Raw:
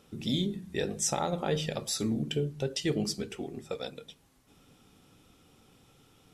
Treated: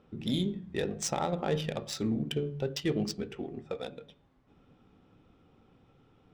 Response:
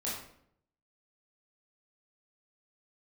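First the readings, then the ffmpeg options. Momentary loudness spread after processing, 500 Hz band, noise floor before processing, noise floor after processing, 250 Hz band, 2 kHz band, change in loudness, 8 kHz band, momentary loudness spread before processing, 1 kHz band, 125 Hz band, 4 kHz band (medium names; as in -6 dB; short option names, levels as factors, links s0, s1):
9 LU, -0.5 dB, -63 dBFS, -65 dBFS, 0.0 dB, -1.5 dB, -1.0 dB, -6.0 dB, 9 LU, -0.5 dB, -0.5 dB, -3.5 dB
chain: -af "bandreject=f=142.6:t=h:w=4,bandreject=f=285.2:t=h:w=4,bandreject=f=427.8:t=h:w=4,bandreject=f=570.4:t=h:w=4,bandreject=f=713:t=h:w=4,bandreject=f=855.6:t=h:w=4,bandreject=f=998.2:t=h:w=4,bandreject=f=1140.8:t=h:w=4,bandreject=f=1283.4:t=h:w=4,bandreject=f=1426:t=h:w=4,bandreject=f=1568.6:t=h:w=4,bandreject=f=1711.2:t=h:w=4,bandreject=f=1853.8:t=h:w=4,bandreject=f=1996.4:t=h:w=4,bandreject=f=2139:t=h:w=4,bandreject=f=2281.6:t=h:w=4,bandreject=f=2424.2:t=h:w=4,bandreject=f=2566.8:t=h:w=4,bandreject=f=2709.4:t=h:w=4,bandreject=f=2852:t=h:w=4,bandreject=f=2994.6:t=h:w=4,bandreject=f=3137.2:t=h:w=4,bandreject=f=3279.8:t=h:w=4,bandreject=f=3422.4:t=h:w=4,bandreject=f=3565:t=h:w=4,bandreject=f=3707.6:t=h:w=4,adynamicsmooth=sensitivity=5:basefreq=2100"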